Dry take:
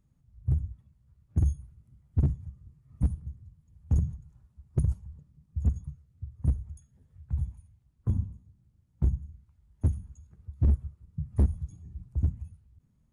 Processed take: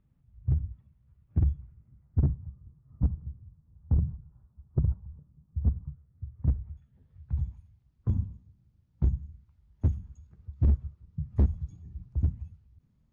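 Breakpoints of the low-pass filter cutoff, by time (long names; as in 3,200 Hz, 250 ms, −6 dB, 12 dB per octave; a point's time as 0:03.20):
low-pass filter 24 dB per octave
0:01.38 3,200 Hz
0:02.46 1,400 Hz
0:05.76 1,400 Hz
0:06.65 2,600 Hz
0:07.33 5,700 Hz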